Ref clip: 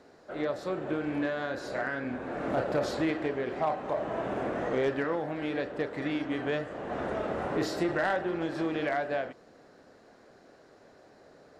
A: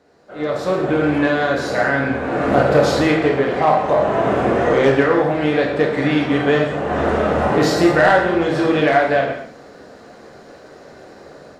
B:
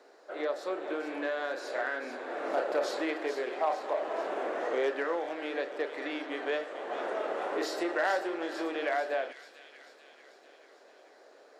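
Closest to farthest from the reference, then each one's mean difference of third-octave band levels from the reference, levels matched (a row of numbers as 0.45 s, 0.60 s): A, B; 2.0 dB, 6.5 dB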